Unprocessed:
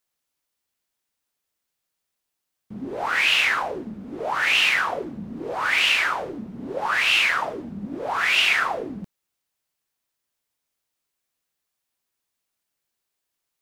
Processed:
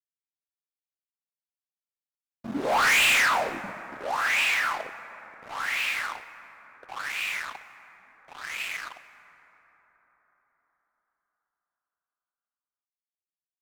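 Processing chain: Doppler pass-by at 2.81, 35 m/s, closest 12 m; HPF 230 Hz 12 dB/oct; bell 390 Hz -9.5 dB 0.78 oct; sample leveller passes 5; plate-style reverb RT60 4.8 s, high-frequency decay 0.35×, DRR 12 dB; gain -8 dB

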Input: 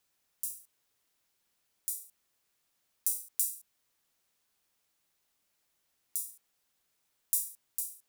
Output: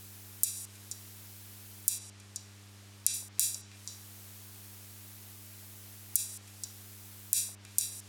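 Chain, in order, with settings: treble ducked by the level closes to 2800 Hz, closed at -34.5 dBFS; high shelf 11000 Hz +8.5 dB; buzz 100 Hz, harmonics 4, -78 dBFS -9 dB/oct; 1.98–3.14 air absorption 53 m; delay with a stepping band-pass 0.16 s, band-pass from 690 Hz, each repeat 1.4 oct, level -9 dB; maximiser +24.5 dB; gain -1 dB

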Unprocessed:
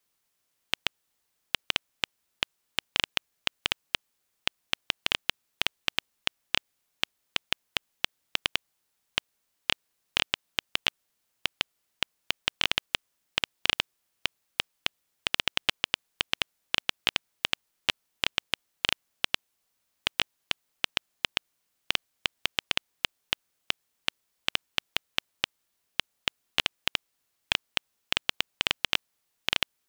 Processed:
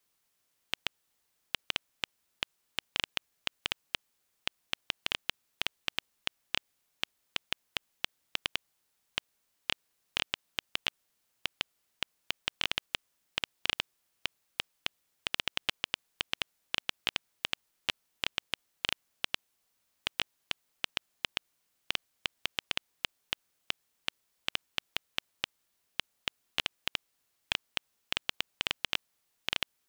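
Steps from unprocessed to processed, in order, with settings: limiter -9 dBFS, peak gain reduction 5.5 dB

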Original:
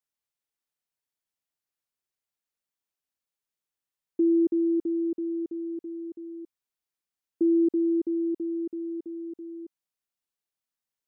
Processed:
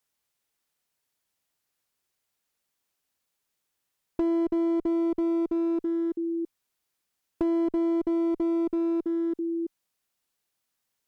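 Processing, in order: in parallel at +0.5 dB: limiter -28 dBFS, peak gain reduction 10.5 dB; on the sum: compressor 5:1, threshold -26 dBFS, peak gain reduction 8 dB; one-sided clip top -28.5 dBFS; gain +3.5 dB

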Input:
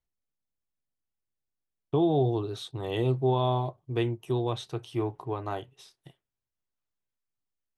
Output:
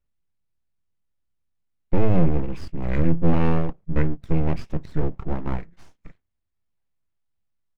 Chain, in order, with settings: pitch shift -7.5 st; full-wave rectifier; tone controls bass +9 dB, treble -9 dB; gain +4 dB

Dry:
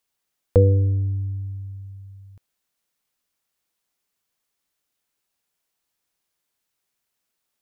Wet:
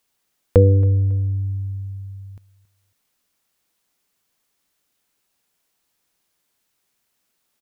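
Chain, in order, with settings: bell 230 Hz +2.5 dB 1.3 oct; in parallel at -1 dB: compressor, threshold -29 dBFS, peak gain reduction 17.5 dB; on the sum: feedback echo 0.275 s, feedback 31%, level -21 dB; gain +1 dB

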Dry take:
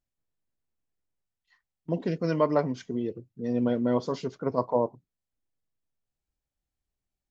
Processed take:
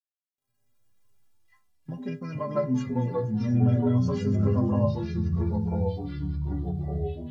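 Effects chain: fifteen-band EQ 160 Hz +11 dB, 400 Hz -6 dB, 4000 Hz -10 dB; AGC gain up to 11 dB; in parallel at -2 dB: limiter -11 dBFS, peak gain reduction 8 dB; on the sum: compressor 2:1, threshold -12 dBFS, peak gain reduction 4 dB; bit-crush 11-bit; metallic resonator 120 Hz, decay 0.54 s, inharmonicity 0.03; on a send: thin delay 0.239 s, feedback 73%, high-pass 4600 Hz, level -16 dB; on the sum: echoes that change speed 0.1 s, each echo -3 st, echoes 3

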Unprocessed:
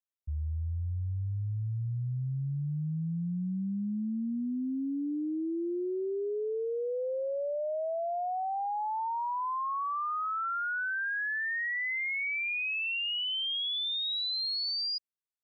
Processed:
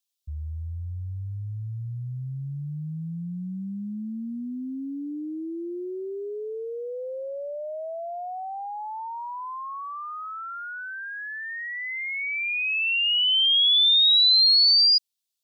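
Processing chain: resonant high shelf 2500 Hz +12.5 dB, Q 1.5

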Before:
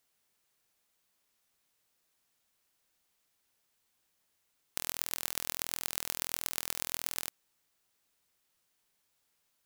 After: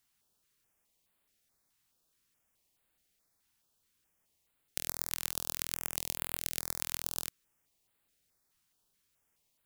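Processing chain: low shelf 160 Hz +6 dB; stepped notch 4.7 Hz 520–5800 Hz

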